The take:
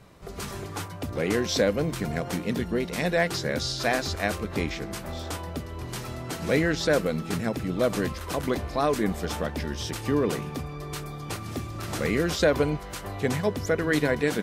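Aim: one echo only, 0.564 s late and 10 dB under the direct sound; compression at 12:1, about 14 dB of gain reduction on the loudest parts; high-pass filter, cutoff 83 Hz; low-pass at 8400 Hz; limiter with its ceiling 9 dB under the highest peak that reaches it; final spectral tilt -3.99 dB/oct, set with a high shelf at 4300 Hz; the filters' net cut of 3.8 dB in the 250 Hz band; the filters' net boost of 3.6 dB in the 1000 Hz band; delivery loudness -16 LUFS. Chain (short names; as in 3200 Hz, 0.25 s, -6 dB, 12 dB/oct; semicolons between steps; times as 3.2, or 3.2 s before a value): HPF 83 Hz; LPF 8400 Hz; bell 250 Hz -5.5 dB; bell 1000 Hz +5 dB; high shelf 4300 Hz +5 dB; compressor 12:1, threshold -31 dBFS; limiter -26.5 dBFS; echo 0.564 s -10 dB; gain +21 dB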